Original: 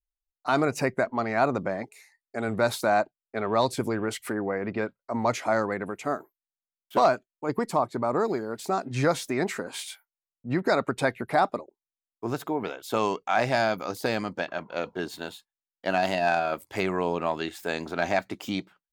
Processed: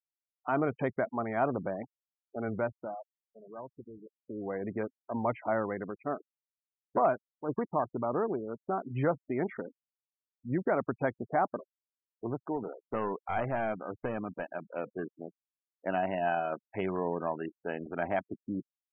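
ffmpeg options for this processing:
-filter_complex "[0:a]asettb=1/sr,asplit=3[s0][s1][s2];[s0]atrim=end=9.074[s3];[s1]atrim=start=9.07:end=11.19,asetpts=PTS-STARTPTS,afade=t=in:d=0.004:c=qsin,afade=t=out:st=2.116:d=0.004:c=qsin,aemphasis=mode=reproduction:type=50fm[s4];[s2]atrim=start=11.186[s5];[s3][s4]acrossfade=d=0.004:c1=hsin:c2=qsin[s6];[s6][s5]acrossfade=d=0.004:c1=qsin:c2=hsin,asettb=1/sr,asplit=3[s7][s8][s9];[s7]atrim=end=12.554[s10];[s8]atrim=start=12.55:end=14.46,asetpts=PTS-STARTPTS,afade=t=in:d=0.004:c=qsin,afade=t=out:st=1.906:d=0.004:c=qsin,aeval=exprs='clip(val(0),-1,0.0562)':c=same[s11];[s9]atrim=start=14.456[s12];[s10][s11]acrossfade=d=0.004:c1=hsin:c2=qsin[s13];[s13][s12]acrossfade=d=0.004:c1=qsin:c2=hsin,asplit=3[s14][s15][s16];[s14]atrim=end=2.97,asetpts=PTS-STARTPTS,afade=t=out:st=2.48:d=0.49:silence=0.188365[s17];[s15]atrim=start=2.97:end=4.12,asetpts=PTS-STARTPTS,volume=0.188[s18];[s16]atrim=start=4.12,asetpts=PTS-STARTPTS,afade=t=in:d=0.49:silence=0.188365[s19];[s17][s18][s19]concat=n=3:v=0:a=1,afwtdn=0.0158,afftfilt=real='re*gte(hypot(re,im),0.0224)':imag='im*gte(hypot(re,im),0.0224)':win_size=1024:overlap=0.75,highshelf=f=2400:g=-11,volume=0.596"

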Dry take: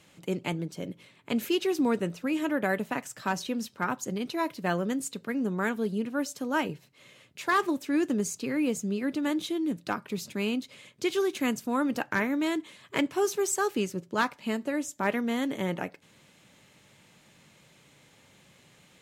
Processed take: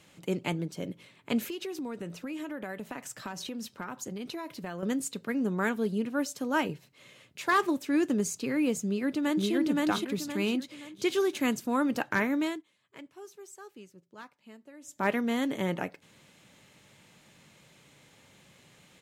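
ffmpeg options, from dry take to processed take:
-filter_complex "[0:a]asettb=1/sr,asplit=3[s0][s1][s2];[s0]atrim=end=1.394[s3];[s1]atrim=start=1.39:end=4.83,asetpts=PTS-STARTPTS,afade=t=in:d=0.004:c=qsin,afade=t=out:st=3.436:d=0.004:c=qsin,acompressor=threshold=0.02:ratio=6:attack=3.2:release=140:knee=1:detection=peak[s4];[s2]atrim=start=4.826[s5];[s3][s4]acrossfade=d=0.004:c1=hsin:c2=qsin[s6];[s6][s5]acrossfade=d=0.004:c1=qsin:c2=hsin,asplit=2[s7][s8];[s8]afade=t=in:st=8.85:d=0.01,afade=t=out:st=9.52:d=0.01,aecho=0:1:520|1040|1560|2080|2600:1|0.35|0.1225|0.042875|0.0150062[s9];[s7][s9]amix=inputs=2:normalize=0,asplit=3[s10][s11][s12];[s10]atrim=end=12.63,asetpts=PTS-STARTPTS,afade=t=out:st=12.4:d=0.23:silence=0.0944061[s13];[s11]atrim=start=12.63:end=14.81,asetpts=PTS-STARTPTS,volume=0.0944[s14];[s12]atrim=start=14.81,asetpts=PTS-STARTPTS,afade=t=in:d=0.23:silence=0.0944061[s15];[s13][s14][s15]concat=n=3:v=0:a=1"

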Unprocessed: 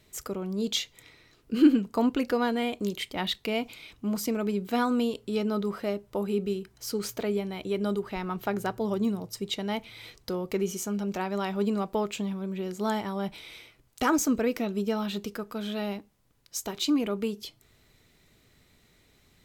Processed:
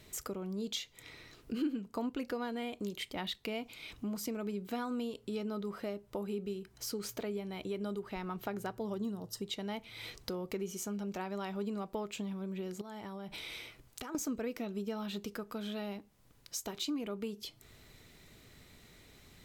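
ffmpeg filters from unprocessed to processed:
-filter_complex "[0:a]asettb=1/sr,asplit=3[s0][s1][s2];[s0]atrim=end=8.974[s3];[s1]atrim=start=8.97:end=9.42,asetpts=PTS-STARTPTS,afade=t=in:d=0.004:c=qsin,afade=t=out:st=0.446:d=0.004:c=qsin,asuperstop=centerf=2300:order=4:qfactor=3.8[s4];[s2]atrim=start=9.416[s5];[s3][s4]acrossfade=d=0.004:c1=hsin:c2=qsin[s6];[s6][s5]acrossfade=d=0.004:c1=qsin:c2=hsin,asettb=1/sr,asplit=3[s7][s8][s9];[s7]atrim=end=12.814[s10];[s8]atrim=start=12.81:end=14.15,asetpts=PTS-STARTPTS,afade=t=in:d=0.004:c=qsin,afade=t=out:st=1.336:d=0.004:c=qsin,acompressor=threshold=0.01:ratio=10:attack=3.2:release=140:knee=1:detection=peak[s11];[s9]atrim=start=14.146[s12];[s10][s11]acrossfade=d=0.004:c1=hsin:c2=qsin[s13];[s13][s12]acrossfade=d=0.004:c1=qsin:c2=hsin,acompressor=threshold=0.00501:ratio=2.5,volume=1.58"

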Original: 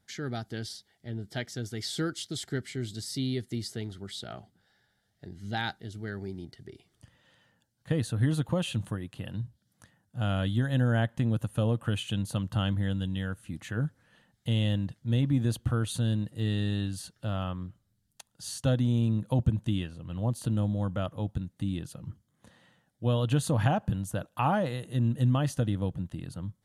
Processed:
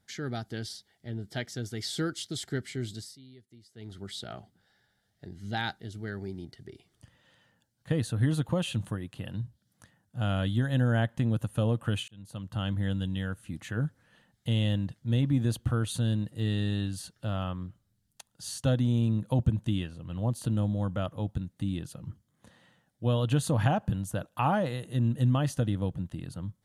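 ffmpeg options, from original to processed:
-filter_complex "[0:a]asplit=4[s0][s1][s2][s3];[s0]atrim=end=3.17,asetpts=PTS-STARTPTS,afade=t=out:st=2.92:d=0.25:silence=0.0841395[s4];[s1]atrim=start=3.17:end=3.74,asetpts=PTS-STARTPTS,volume=0.0841[s5];[s2]atrim=start=3.74:end=12.08,asetpts=PTS-STARTPTS,afade=t=in:d=0.25:silence=0.0841395,afade=t=out:st=8.336:d=0.004:c=hsin[s6];[s3]atrim=start=12.08,asetpts=PTS-STARTPTS,afade=t=in:d=0.8[s7];[s4][s5][s6][s7]concat=n=4:v=0:a=1"

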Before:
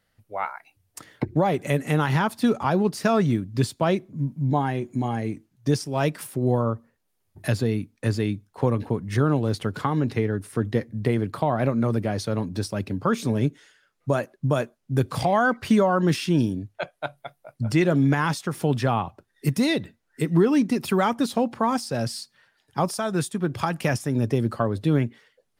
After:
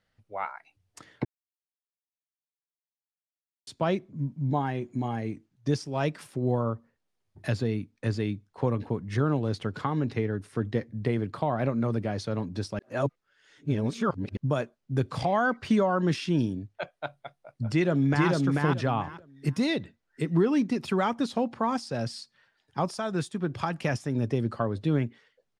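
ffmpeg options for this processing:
-filter_complex "[0:a]asplit=2[s0][s1];[s1]afade=t=in:st=17.69:d=0.01,afade=t=out:st=18.29:d=0.01,aecho=0:1:440|880|1320:0.841395|0.168279|0.0336558[s2];[s0][s2]amix=inputs=2:normalize=0,asplit=5[s3][s4][s5][s6][s7];[s3]atrim=end=1.25,asetpts=PTS-STARTPTS,afade=t=out:st=1.246:d=0.004:c=hsin[s8];[s4]atrim=start=1.25:end=3.67,asetpts=PTS-STARTPTS,volume=0[s9];[s5]atrim=start=3.67:end=12.792,asetpts=PTS-STARTPTS,afade=t=in:d=0.004:c=hsin[s10];[s6]atrim=start=12.788:end=14.372,asetpts=PTS-STARTPTS,areverse[s11];[s7]atrim=start=14.368[s12];[s8][s9][s10]concat=n=3:v=0:a=1[s13];[s13][s11]acrossfade=d=0.004:c1=hsin:c2=hsin[s14];[s14][s12]acrossfade=d=0.004:c1=hsin:c2=hsin,lowpass=6500,volume=0.596"

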